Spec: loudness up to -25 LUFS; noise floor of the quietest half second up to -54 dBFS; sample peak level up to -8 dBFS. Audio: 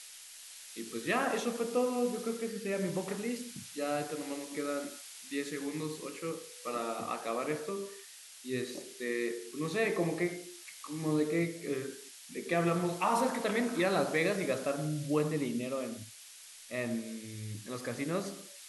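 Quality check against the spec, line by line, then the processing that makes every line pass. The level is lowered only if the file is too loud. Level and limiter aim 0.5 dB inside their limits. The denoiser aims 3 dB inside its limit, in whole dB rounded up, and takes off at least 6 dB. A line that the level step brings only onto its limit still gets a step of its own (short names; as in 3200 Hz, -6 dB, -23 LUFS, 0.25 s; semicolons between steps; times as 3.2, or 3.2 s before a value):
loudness -34.5 LUFS: OK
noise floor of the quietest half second -52 dBFS: fail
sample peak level -16.5 dBFS: OK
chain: denoiser 6 dB, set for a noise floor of -52 dBFS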